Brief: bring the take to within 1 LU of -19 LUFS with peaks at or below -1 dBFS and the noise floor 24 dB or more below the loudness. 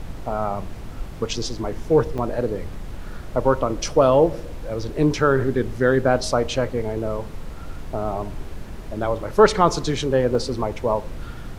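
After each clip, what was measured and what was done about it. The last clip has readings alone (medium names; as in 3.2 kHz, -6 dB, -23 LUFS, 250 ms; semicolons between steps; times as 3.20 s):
dropouts 2; longest dropout 2.7 ms; noise floor -35 dBFS; noise floor target -46 dBFS; loudness -22.0 LUFS; peak level -2.0 dBFS; loudness target -19.0 LUFS
-> interpolate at 2.18/10.35 s, 2.7 ms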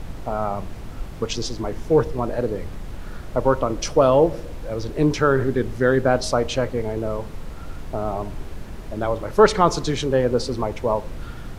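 dropouts 0; noise floor -35 dBFS; noise floor target -46 dBFS
-> noise print and reduce 11 dB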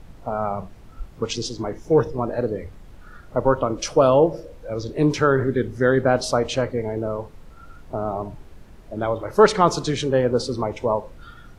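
noise floor -45 dBFS; noise floor target -46 dBFS
-> noise print and reduce 6 dB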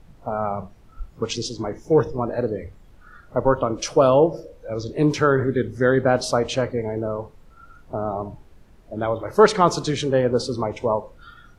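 noise floor -50 dBFS; loudness -22.0 LUFS; peak level -2.0 dBFS; loudness target -19.0 LUFS
-> trim +3 dB; peak limiter -1 dBFS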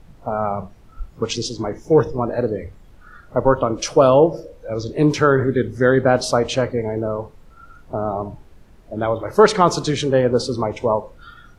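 loudness -19.0 LUFS; peak level -1.0 dBFS; noise floor -47 dBFS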